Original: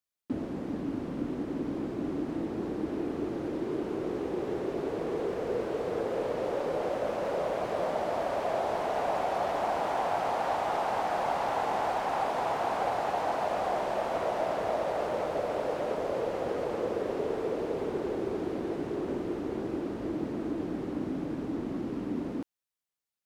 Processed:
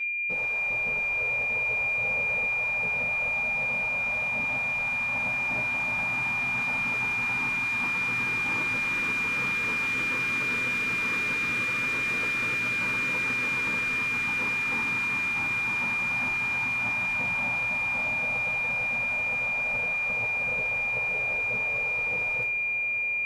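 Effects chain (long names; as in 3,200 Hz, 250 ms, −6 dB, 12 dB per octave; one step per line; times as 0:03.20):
hum removal 76.29 Hz, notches 33
gate on every frequency bin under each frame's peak −15 dB weak
steady tone 2,400 Hz −35 dBFS
on a send: feedback delay with all-pass diffusion 1,487 ms, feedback 65%, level −13.5 dB
on the sum: coupled-rooms reverb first 0.26 s, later 3 s, from −18 dB, DRR −3.5 dB
level +1 dB
Ogg Vorbis 192 kbit/s 44,100 Hz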